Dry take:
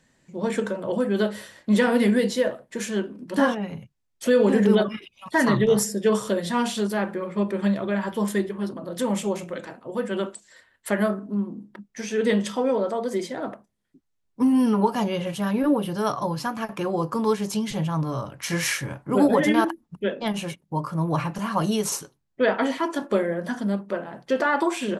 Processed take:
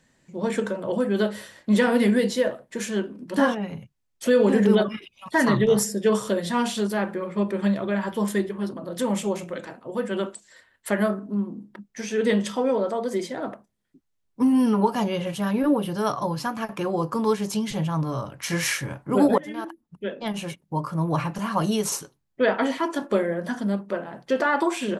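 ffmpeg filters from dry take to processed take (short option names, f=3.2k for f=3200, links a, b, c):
-filter_complex "[0:a]asplit=2[a][b];[a]atrim=end=19.38,asetpts=PTS-STARTPTS,afade=t=out:st=19.376:d=0.004:c=hsin:silence=0.0891251[c];[b]atrim=start=19.38,asetpts=PTS-STARTPTS,afade=t=in:d=1.27:silence=0.0891251[d];[c][d]concat=n=2:v=0:a=1"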